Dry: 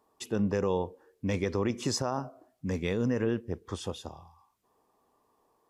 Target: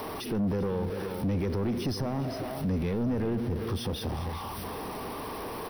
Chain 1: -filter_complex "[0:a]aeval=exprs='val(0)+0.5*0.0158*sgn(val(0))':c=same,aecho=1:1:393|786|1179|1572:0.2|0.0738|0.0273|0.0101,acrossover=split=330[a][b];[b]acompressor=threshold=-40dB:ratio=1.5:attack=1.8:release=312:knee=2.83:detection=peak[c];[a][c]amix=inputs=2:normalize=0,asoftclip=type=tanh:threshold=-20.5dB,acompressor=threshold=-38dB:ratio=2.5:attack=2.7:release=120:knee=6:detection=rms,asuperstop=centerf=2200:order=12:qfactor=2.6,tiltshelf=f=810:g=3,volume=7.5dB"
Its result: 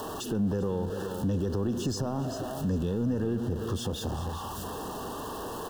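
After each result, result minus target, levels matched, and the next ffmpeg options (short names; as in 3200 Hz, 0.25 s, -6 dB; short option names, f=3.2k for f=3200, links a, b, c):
soft clip: distortion -11 dB; 8000 Hz band +5.0 dB
-filter_complex "[0:a]aeval=exprs='val(0)+0.5*0.0158*sgn(val(0))':c=same,aecho=1:1:393|786|1179|1572:0.2|0.0738|0.0273|0.0101,acrossover=split=330[a][b];[b]acompressor=threshold=-40dB:ratio=1.5:attack=1.8:release=312:knee=2.83:detection=peak[c];[a][c]amix=inputs=2:normalize=0,asoftclip=type=tanh:threshold=-29dB,acompressor=threshold=-38dB:ratio=2.5:attack=2.7:release=120:knee=6:detection=rms,asuperstop=centerf=2200:order=12:qfactor=2.6,tiltshelf=f=810:g=3,volume=7.5dB"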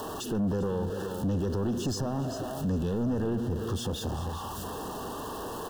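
8000 Hz band +5.5 dB
-filter_complex "[0:a]aeval=exprs='val(0)+0.5*0.0158*sgn(val(0))':c=same,aecho=1:1:393|786|1179|1572:0.2|0.0738|0.0273|0.0101,acrossover=split=330[a][b];[b]acompressor=threshold=-40dB:ratio=1.5:attack=1.8:release=312:knee=2.83:detection=peak[c];[a][c]amix=inputs=2:normalize=0,asoftclip=type=tanh:threshold=-29dB,acompressor=threshold=-38dB:ratio=2.5:attack=2.7:release=120:knee=6:detection=rms,asuperstop=centerf=7200:order=12:qfactor=2.6,tiltshelf=f=810:g=3,volume=7.5dB"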